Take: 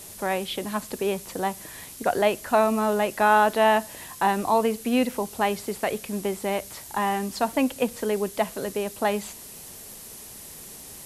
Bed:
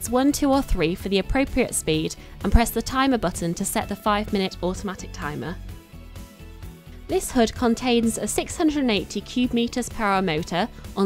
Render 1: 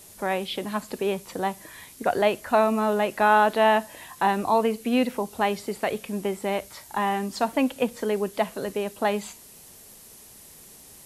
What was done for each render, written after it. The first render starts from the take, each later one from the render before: noise print and reduce 6 dB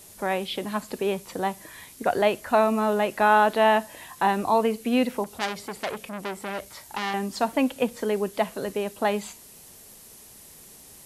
5.24–7.14 s: transformer saturation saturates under 3.8 kHz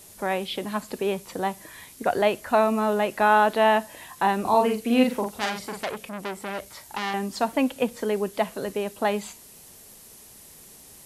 4.41–5.84 s: doubling 43 ms -3.5 dB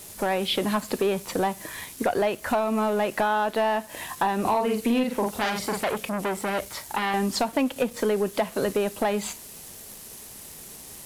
compression 12:1, threshold -26 dBFS, peak gain reduction 13.5 dB; waveshaping leveller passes 2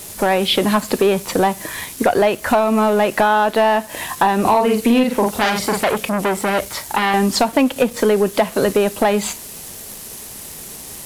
trim +9 dB

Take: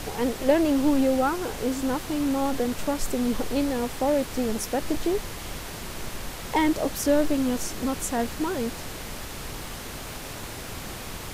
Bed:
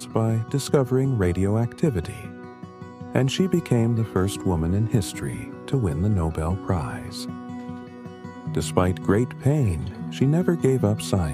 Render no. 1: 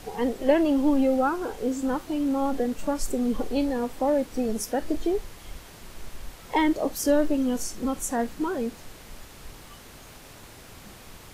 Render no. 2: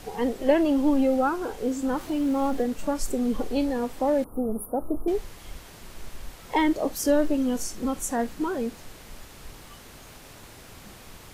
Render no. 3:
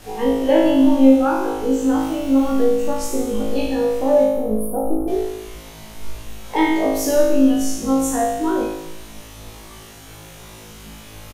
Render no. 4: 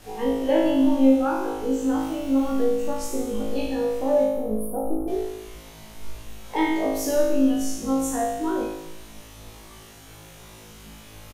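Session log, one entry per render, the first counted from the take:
noise print and reduce 10 dB
1.97–2.62 s: companding laws mixed up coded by mu; 4.24–5.08 s: Chebyshev band-stop 1.3–9.7 kHz, order 5
doubling 19 ms -12.5 dB; flutter echo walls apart 3.2 m, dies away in 0.97 s
trim -5.5 dB

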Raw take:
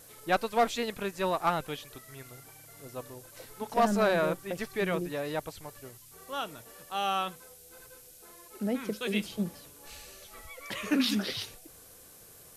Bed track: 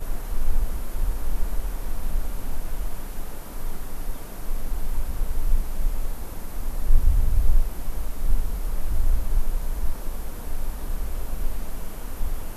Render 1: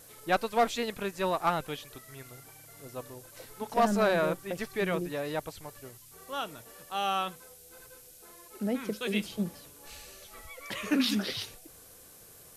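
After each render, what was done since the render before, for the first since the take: no audible change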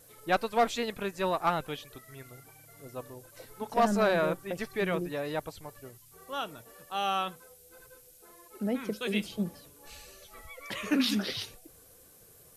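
noise reduction 6 dB, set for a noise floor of -54 dBFS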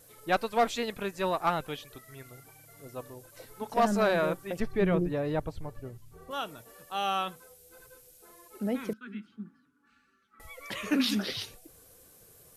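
4.60–6.31 s: tilt EQ -3 dB/octave; 8.93–10.40 s: two resonant band-passes 590 Hz, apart 2.5 oct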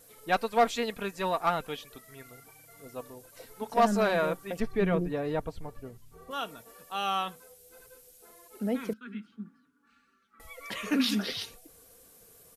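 bass shelf 210 Hz -3 dB; comb 4.3 ms, depth 32%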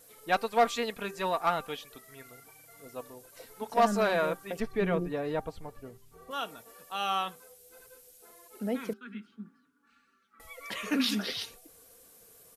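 bass shelf 210 Hz -5.5 dB; de-hum 393.7 Hz, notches 4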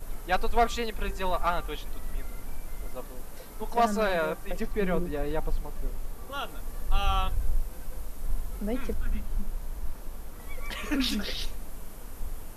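add bed track -8.5 dB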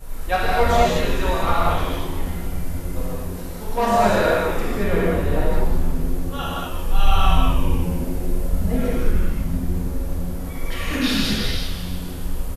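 frequency-shifting echo 154 ms, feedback 62%, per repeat -94 Hz, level -9 dB; gated-style reverb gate 270 ms flat, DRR -7.5 dB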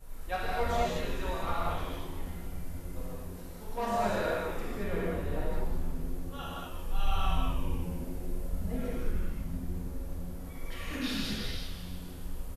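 trim -13 dB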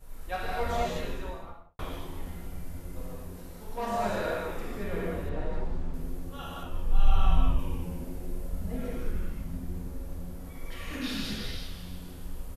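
0.98–1.79 s: studio fade out; 5.29–5.94 s: distance through air 86 m; 6.63–7.59 s: tilt EQ -1.5 dB/octave

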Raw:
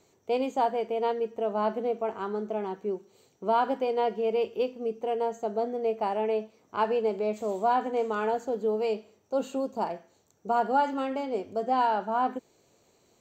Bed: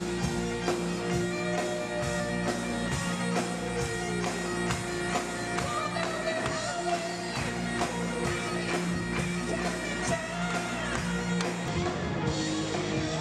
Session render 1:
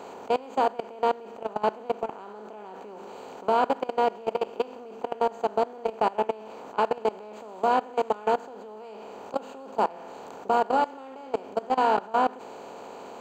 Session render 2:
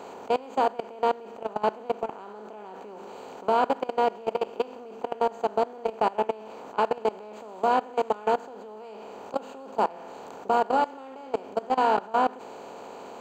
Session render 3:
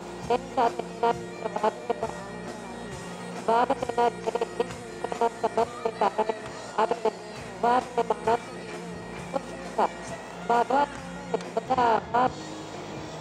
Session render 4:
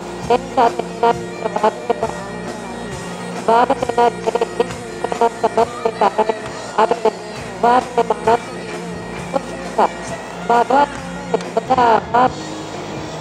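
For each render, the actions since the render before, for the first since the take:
spectral levelling over time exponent 0.4; level held to a coarse grid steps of 21 dB
no audible change
add bed -9 dB
trim +10.5 dB; peak limiter -2 dBFS, peak gain reduction 2 dB

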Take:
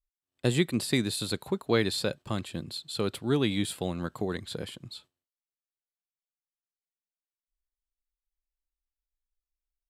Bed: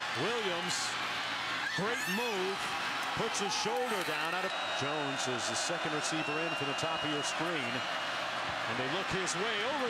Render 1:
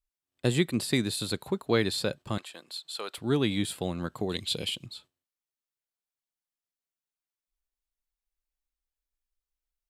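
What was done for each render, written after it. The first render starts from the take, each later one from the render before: 2.38–3.18 s: Chebyshev high-pass 770 Hz; 4.29–4.86 s: resonant high shelf 2.1 kHz +7.5 dB, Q 3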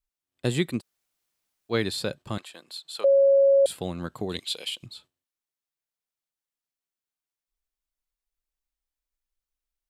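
0.79–1.72 s: room tone, crossfade 0.06 s; 3.04–3.66 s: bleep 551 Hz -14.5 dBFS; 4.39–4.83 s: high-pass 600 Hz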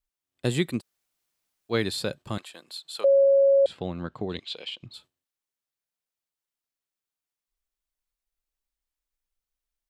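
3.24–4.94 s: distance through air 170 m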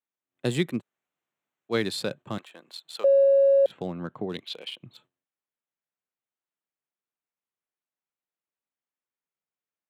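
local Wiener filter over 9 samples; high-pass 120 Hz 24 dB/octave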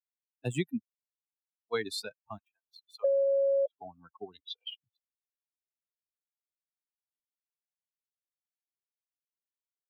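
expander on every frequency bin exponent 3; compression, threshold -25 dBFS, peak gain reduction 7.5 dB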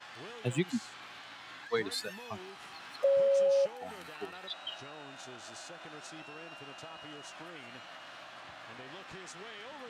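add bed -13.5 dB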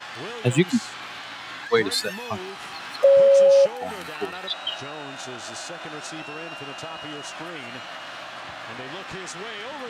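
trim +12 dB

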